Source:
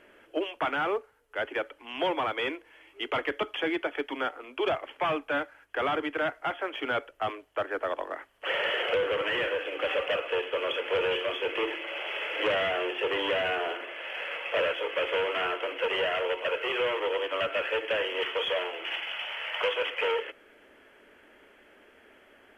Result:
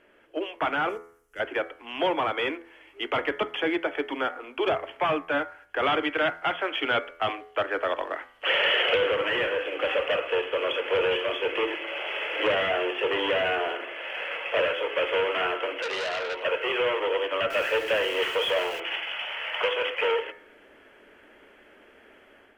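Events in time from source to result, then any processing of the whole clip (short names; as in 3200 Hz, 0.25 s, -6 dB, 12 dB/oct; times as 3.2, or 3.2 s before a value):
0.89–1.4 EQ curve 210 Hz 0 dB, 950 Hz -19 dB, 1700 Hz -6 dB, 4200 Hz -6 dB, 5900 Hz +7 dB
5.83–9.11 bell 3200 Hz +6.5 dB 1.5 oct
15.82–16.43 core saturation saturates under 2900 Hz
17.5–18.8 zero-crossing step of -38 dBFS
whole clip: high shelf 4800 Hz -5 dB; de-hum 83.89 Hz, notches 27; AGC gain up to 6 dB; gain -2.5 dB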